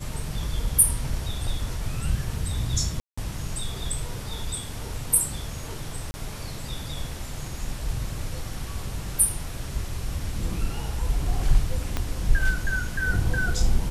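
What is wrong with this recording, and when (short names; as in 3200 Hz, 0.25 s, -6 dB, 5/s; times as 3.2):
3–3.17 gap 0.175 s
6.11–6.14 gap 30 ms
11.97 pop -11 dBFS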